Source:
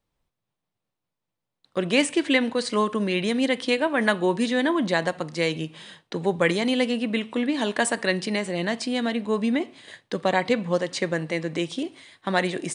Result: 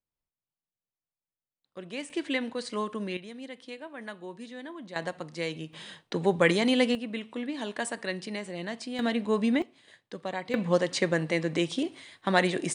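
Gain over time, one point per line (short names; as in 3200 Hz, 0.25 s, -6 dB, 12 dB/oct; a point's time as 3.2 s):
-16.5 dB
from 2.1 s -9 dB
from 3.17 s -19 dB
from 4.96 s -8.5 dB
from 5.73 s -1 dB
from 6.95 s -9.5 dB
from 8.99 s -2 dB
from 9.62 s -12 dB
from 10.54 s -0.5 dB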